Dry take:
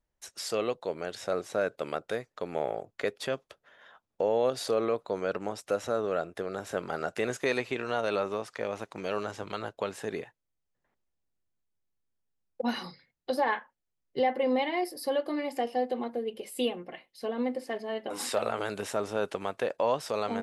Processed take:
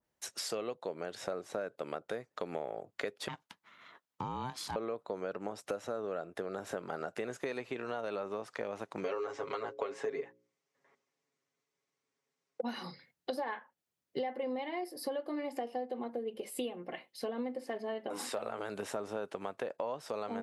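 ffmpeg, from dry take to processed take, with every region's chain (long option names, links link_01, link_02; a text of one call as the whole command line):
ffmpeg -i in.wav -filter_complex "[0:a]asettb=1/sr,asplit=3[link_01][link_02][link_03];[link_01]atrim=end=3.284[link_04];[link_02]atrim=start=3.28:end=4.76,asetpts=PTS-STARTPTS,afade=type=in:duration=0.004:curve=qsin,afade=type=out:start_time=1.476:duration=0.004:curve=qsin,highpass=frequency=1100:poles=1,aeval=exprs='val(0)*sin(2*PI*380*n/s)':channel_layout=same[link_05];[link_03]atrim=start=4.756[link_06];[link_04][link_05]acrossfade=duration=0.004:curve1=hsin:curve2=qsin[link_07];[link_07][link_06]acrossfade=duration=0.004:curve1=qsin:curve2=hsin,asettb=1/sr,asplit=3[link_08][link_09][link_10];[link_08]atrim=end=9.044[link_11];[link_09]atrim=start=9.04:end=12.61,asetpts=PTS-STARTPTS,afade=type=in:duration=0.004:curve=qsin,afade=type=out:start_time=3.566:duration=0.004:curve=qsin,highpass=160,equalizer=frequency=450:width_type=q:width=4:gain=9,equalizer=frequency=1100:width_type=q:width=4:gain=6,equalizer=frequency=2100:width_type=q:width=4:gain=8,equalizer=frequency=5700:width_type=q:width=4:gain=4,lowpass=frequency=8300:width=0.5412,lowpass=frequency=8300:width=1.3066,bandreject=frequency=60:width_type=h:width=6,bandreject=frequency=120:width_type=h:width=6,bandreject=frequency=180:width_type=h:width=6,bandreject=frequency=240:width_type=h:width=6,bandreject=frequency=300:width_type=h:width=6,bandreject=frequency=360:width_type=h:width=6,bandreject=frequency=420:width_type=h:width=6,bandreject=frequency=480:width_type=h:width=6,bandreject=frequency=540:width_type=h:width=6,aecho=1:1:7.3:0.89,atrim=end_sample=157437[link_12];[link_10]atrim=start=12.606[link_13];[link_11][link_12]acrossfade=duration=0.004:curve1=hsin:curve2=qsin[link_14];[link_14][link_13]acrossfade=duration=0.004:curve1=qsin:curve2=hsin,highpass=120,acompressor=threshold=-38dB:ratio=6,adynamicequalizer=threshold=0.00141:dfrequency=1800:dqfactor=0.7:tfrequency=1800:tqfactor=0.7:attack=5:release=100:ratio=0.375:range=2.5:mode=cutabove:tftype=highshelf,volume=3.5dB" out.wav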